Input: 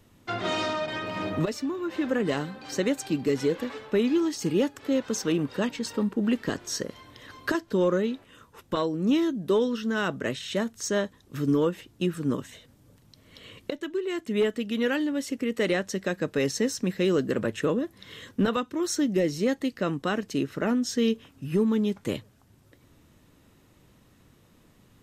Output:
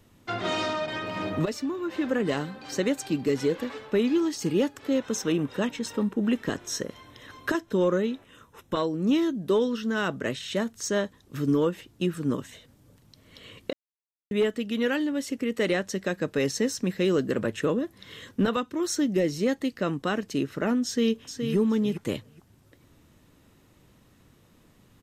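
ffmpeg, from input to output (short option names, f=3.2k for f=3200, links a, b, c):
-filter_complex "[0:a]asettb=1/sr,asplit=3[a][b][c];[a]atrim=end=4.984[d];[b]atrim=start=4.98:end=8.79,asetpts=PTS-STARTPTS,afade=t=in:d=0.004:c=qsin,afade=t=out:st=3.806:d=0.004:c=qsin,asuperstop=centerf=4600:order=4:qfactor=7.5[e];[c]atrim=start=8.786[f];[d][e]acrossfade=d=0.004:c1=hsin:c2=qsin[g];[g][f]acrossfade=d=0.004:c1=qsin:c2=hsin,asplit=2[h][i];[i]afade=t=in:st=20.85:d=0.01,afade=t=out:st=21.55:d=0.01,aecho=0:1:420|840|1260:0.473151|0.0709727|0.0106459[j];[h][j]amix=inputs=2:normalize=0,asplit=3[k][l][m];[k]atrim=end=13.73,asetpts=PTS-STARTPTS,afade=t=out:st=13.726:d=0.004:c=hsin[n];[l]atrim=start=13.73:end=14.31,asetpts=PTS-STARTPTS,volume=0[o];[m]atrim=start=14.31,asetpts=PTS-STARTPTS,afade=t=in:d=0.004:c=hsin[p];[n][o][p]concat=n=3:v=0:a=1"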